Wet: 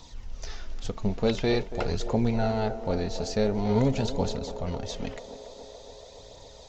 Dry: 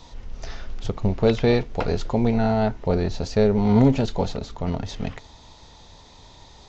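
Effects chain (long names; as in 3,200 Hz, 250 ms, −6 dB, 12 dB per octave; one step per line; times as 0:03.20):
high-shelf EQ 4,800 Hz +11.5 dB
phase shifter 0.47 Hz, delay 4.8 ms, feedback 35%
feedback echo with a band-pass in the loop 282 ms, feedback 82%, band-pass 570 Hz, level −10 dB
level −6.5 dB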